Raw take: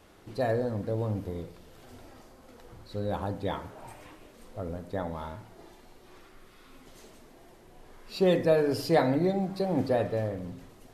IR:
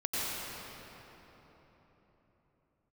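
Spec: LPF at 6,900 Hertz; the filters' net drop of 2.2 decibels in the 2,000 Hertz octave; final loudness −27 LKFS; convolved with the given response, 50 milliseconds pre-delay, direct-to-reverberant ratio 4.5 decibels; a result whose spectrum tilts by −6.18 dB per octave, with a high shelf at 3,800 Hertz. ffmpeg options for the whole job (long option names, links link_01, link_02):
-filter_complex "[0:a]lowpass=6900,equalizer=frequency=2000:width_type=o:gain=-4.5,highshelf=frequency=3800:gain=8,asplit=2[link_01][link_02];[1:a]atrim=start_sample=2205,adelay=50[link_03];[link_02][link_03]afir=irnorm=-1:irlink=0,volume=-12.5dB[link_04];[link_01][link_04]amix=inputs=2:normalize=0,volume=1.5dB"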